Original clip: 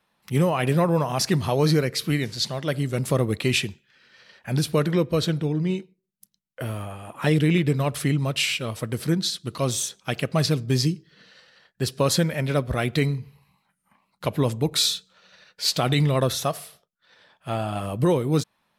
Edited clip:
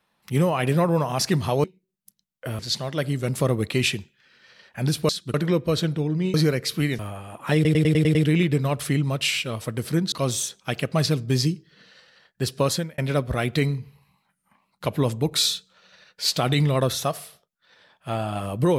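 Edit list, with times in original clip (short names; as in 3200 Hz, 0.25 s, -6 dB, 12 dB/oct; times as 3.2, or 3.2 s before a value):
1.64–2.29 swap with 5.79–6.74
7.3 stutter 0.10 s, 7 plays
9.27–9.52 move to 4.79
12.03–12.38 fade out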